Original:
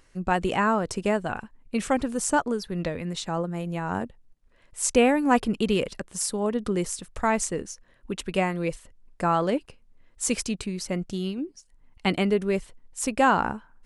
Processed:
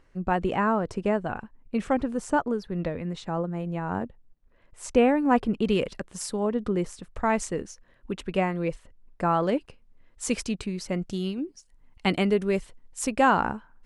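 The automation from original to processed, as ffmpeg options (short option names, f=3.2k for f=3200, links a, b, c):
-af "asetnsamples=n=441:p=0,asendcmd='5.65 lowpass f 3800;6.45 lowpass f 1700;7.3 lowpass f 3700;8.13 lowpass f 2200;9.43 lowpass f 4300;11.02 lowpass f 10000;13.07 lowpass f 4700',lowpass=f=1.5k:p=1"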